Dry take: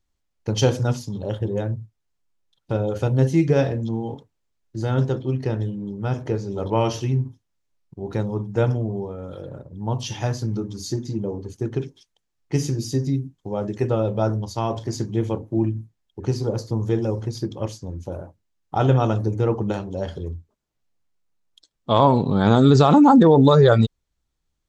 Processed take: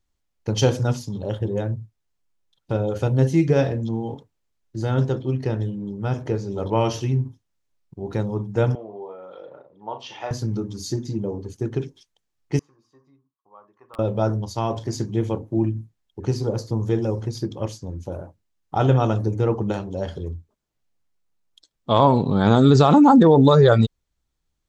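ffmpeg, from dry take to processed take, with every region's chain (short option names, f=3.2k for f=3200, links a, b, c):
-filter_complex "[0:a]asettb=1/sr,asplit=3[a][b][c];[a]atrim=end=8.754[d];[b]atrim=start=8.75:end=10.31,asetpts=PTS-STARTPTS,afade=t=in:d=0.004:c=qsin,afade=t=out:st=1.556:d=0.004:c=qsin,highpass=560,lowpass=2.7k,bandreject=f=1.6k:w=9.4,asplit=2[e][f];[f]adelay=38,volume=-8.5dB[g];[e][g]amix=inputs=2:normalize=0,atrim=end_sample=68796[h];[c]atrim=start=10.306[i];[d][h]acrossfade=d=0.004:c1=hsin:c2=qsin[j];[j][i]acrossfade=d=0.004:c1=qsin:c2=hsin,asettb=1/sr,asplit=3[k][l][m];[k]atrim=end=12.594[n];[l]atrim=start=12.59:end=13.99,asetpts=PTS-STARTPTS,afade=t=in:d=0.004:c=qsin,afade=t=out:st=1.396:d=0.004:c=qsin,bandpass=f=1.1k:t=q:w=13,aeval=exprs='(mod(42.2*val(0)+1,2)-1)/42.2':c=same[o];[m]atrim=start=13.986[p];[n][o]acrossfade=d=0.004:c1=hsin:c2=qsin[q];[q][p]acrossfade=d=0.004:c1=qsin:c2=hsin"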